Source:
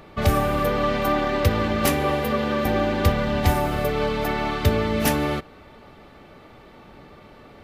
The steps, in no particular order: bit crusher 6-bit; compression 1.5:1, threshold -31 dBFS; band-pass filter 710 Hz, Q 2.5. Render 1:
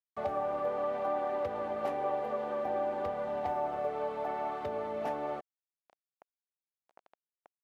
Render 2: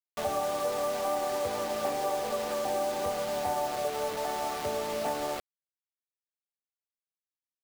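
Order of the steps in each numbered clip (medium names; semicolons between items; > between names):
bit crusher > compression > band-pass filter; band-pass filter > bit crusher > compression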